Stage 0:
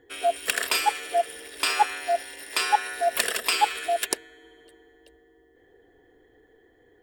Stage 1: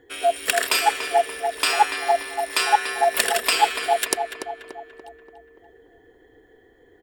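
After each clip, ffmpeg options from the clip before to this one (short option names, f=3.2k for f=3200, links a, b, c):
-filter_complex "[0:a]asplit=2[a][b];[b]adelay=289,lowpass=f=2.5k:p=1,volume=-6.5dB,asplit=2[c][d];[d]adelay=289,lowpass=f=2.5k:p=1,volume=0.53,asplit=2[e][f];[f]adelay=289,lowpass=f=2.5k:p=1,volume=0.53,asplit=2[g][h];[h]adelay=289,lowpass=f=2.5k:p=1,volume=0.53,asplit=2[i][j];[j]adelay=289,lowpass=f=2.5k:p=1,volume=0.53,asplit=2[k][l];[l]adelay=289,lowpass=f=2.5k:p=1,volume=0.53,asplit=2[m][n];[n]adelay=289,lowpass=f=2.5k:p=1,volume=0.53[o];[a][c][e][g][i][k][m][o]amix=inputs=8:normalize=0,volume=3.5dB"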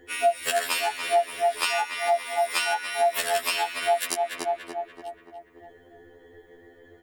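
-af "acompressor=threshold=-26dB:ratio=6,afftfilt=real='re*2*eq(mod(b,4),0)':imag='im*2*eq(mod(b,4),0)':win_size=2048:overlap=0.75,volume=5dB"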